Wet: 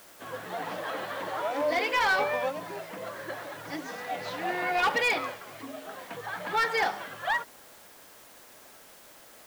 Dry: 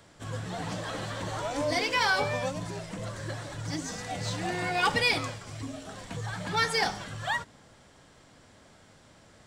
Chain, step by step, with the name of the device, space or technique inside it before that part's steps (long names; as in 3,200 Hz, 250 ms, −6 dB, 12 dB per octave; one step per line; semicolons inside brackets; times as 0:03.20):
aircraft radio (band-pass filter 390–2,600 Hz; hard clipping −24 dBFS, distortion −15 dB; white noise bed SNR 22 dB)
level +3.5 dB